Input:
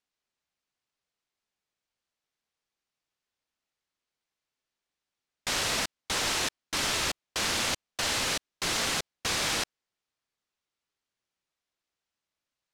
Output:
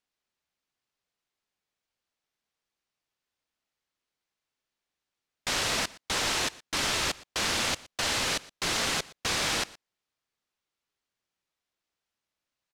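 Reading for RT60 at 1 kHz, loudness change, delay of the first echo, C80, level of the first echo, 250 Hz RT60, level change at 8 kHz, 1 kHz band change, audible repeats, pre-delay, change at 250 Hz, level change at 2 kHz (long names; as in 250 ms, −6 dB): no reverb audible, +0.5 dB, 118 ms, no reverb audible, −21.0 dB, no reverb audible, −0.5 dB, +1.0 dB, 1, no reverb audible, +1.0 dB, +1.0 dB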